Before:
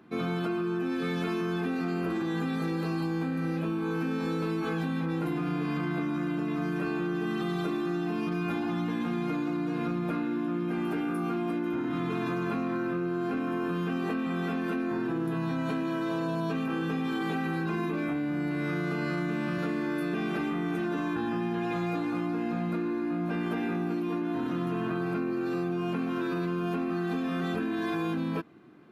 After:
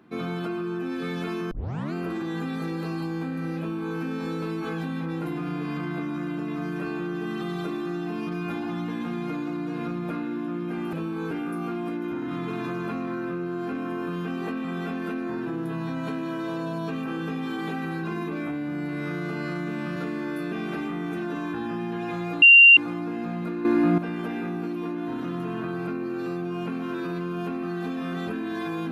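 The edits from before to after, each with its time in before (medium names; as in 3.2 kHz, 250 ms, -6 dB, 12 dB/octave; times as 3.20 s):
1.51 s: tape start 0.42 s
3.59–3.97 s: copy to 10.93 s
22.04 s: add tone 2.77 kHz -8 dBFS 0.35 s
22.92–23.25 s: gain +10.5 dB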